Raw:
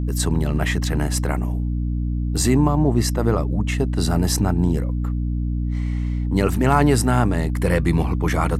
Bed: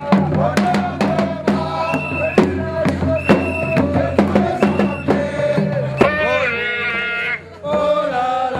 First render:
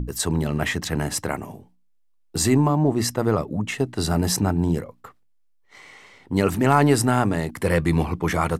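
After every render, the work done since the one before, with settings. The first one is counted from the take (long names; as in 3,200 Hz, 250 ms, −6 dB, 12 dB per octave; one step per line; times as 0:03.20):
mains-hum notches 60/120/180/240/300 Hz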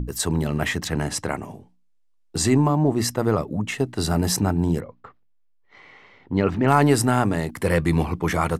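0:00.88–0:02.65: low-pass filter 9,600 Hz
0:04.80–0:06.68: high-frequency loss of the air 220 metres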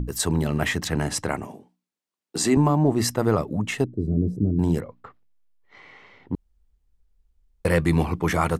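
0:01.47–0:02.57: Chebyshev high-pass filter 240 Hz
0:03.84–0:04.59: inverse Chebyshev low-pass filter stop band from 850 Hz
0:06.35–0:07.65: fill with room tone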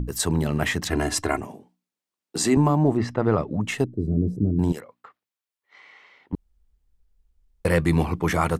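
0:00.90–0:01.41: comb filter 2.9 ms, depth 87%
0:02.96–0:03.60: low-pass filter 2,000 Hz → 5,000 Hz
0:04.72–0:06.33: high-pass filter 1,100 Hz 6 dB per octave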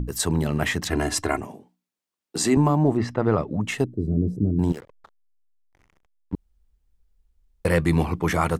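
0:04.69–0:06.34: slack as between gear wheels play −37.5 dBFS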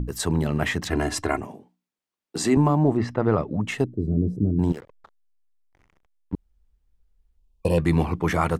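0:07.38–0:07.79: gain on a spectral selection 1,100–2,400 Hz −22 dB
high-shelf EQ 4,900 Hz −6 dB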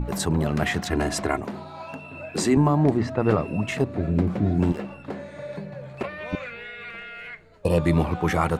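mix in bed −18 dB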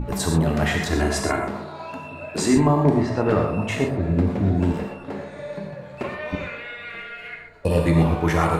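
delay with a band-pass on its return 125 ms, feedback 57%, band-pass 720 Hz, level −10 dB
reverb whose tail is shaped and stops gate 150 ms flat, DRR 1 dB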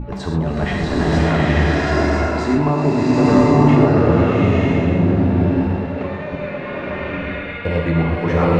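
high-frequency loss of the air 180 metres
slow-attack reverb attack 940 ms, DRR −6.5 dB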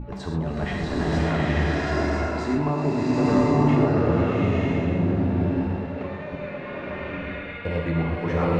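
level −7 dB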